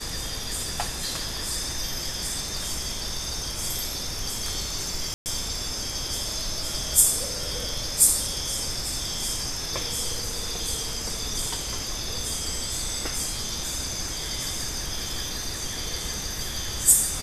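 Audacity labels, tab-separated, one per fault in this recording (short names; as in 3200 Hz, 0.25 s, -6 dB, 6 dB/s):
5.140000	5.260000	gap 0.119 s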